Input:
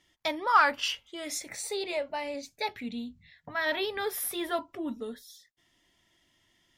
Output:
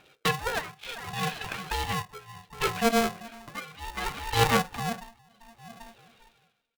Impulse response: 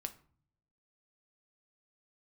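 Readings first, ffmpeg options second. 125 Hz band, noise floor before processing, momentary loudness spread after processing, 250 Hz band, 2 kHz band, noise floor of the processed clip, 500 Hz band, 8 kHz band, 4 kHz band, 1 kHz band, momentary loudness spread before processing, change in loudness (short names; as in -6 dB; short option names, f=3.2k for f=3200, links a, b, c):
+24.0 dB, -71 dBFS, 21 LU, +4.0 dB, +0.5 dB, -72 dBFS, +1.5 dB, +0.5 dB, +2.0 dB, 0.0 dB, 14 LU, +1.5 dB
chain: -filter_complex "[0:a]aresample=11025,asoftclip=type=hard:threshold=-22.5dB,aresample=44100,asplit=2[a][b];[b]adelay=395,lowpass=f=800:p=1,volume=-9dB,asplit=2[c][d];[d]adelay=395,lowpass=f=800:p=1,volume=0.32,asplit=2[e][f];[f]adelay=395,lowpass=f=800:p=1,volume=0.32,asplit=2[g][h];[h]adelay=395,lowpass=f=800:p=1,volume=0.32[i];[a][c][e][g][i]amix=inputs=5:normalize=0,tremolo=f=0.67:d=0.95,asoftclip=type=tanh:threshold=-26dB,aphaser=in_gain=1:out_gain=1:delay=4.4:decay=0.52:speed=0.52:type=triangular,aeval=exprs='0.075*(cos(1*acos(clip(val(0)/0.075,-1,1)))-cos(1*PI/2))+0.0335*(cos(2*acos(clip(val(0)/0.075,-1,1)))-cos(2*PI/2))':c=same,asplit=2[j][k];[1:a]atrim=start_sample=2205,atrim=end_sample=4410,asetrate=39690,aresample=44100[l];[k][l]afir=irnorm=-1:irlink=0,volume=-4dB[m];[j][m]amix=inputs=2:normalize=0,aresample=8000,aresample=44100,aeval=exprs='val(0)*sgn(sin(2*PI*460*n/s))':c=same,volume=5dB"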